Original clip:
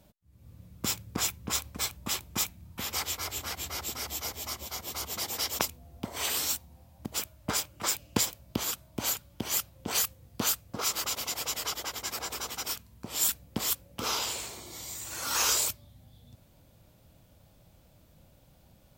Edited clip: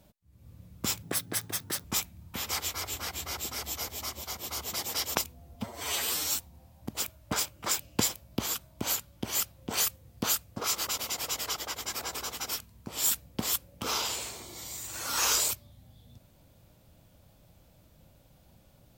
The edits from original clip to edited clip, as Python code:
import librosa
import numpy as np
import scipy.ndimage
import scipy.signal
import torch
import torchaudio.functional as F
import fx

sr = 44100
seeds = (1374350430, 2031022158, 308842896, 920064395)

y = fx.edit(x, sr, fx.speed_span(start_s=1.03, length_s=1.25, speed=1.54),
    fx.stretch_span(start_s=5.99, length_s=0.53, factor=1.5), tone=tone)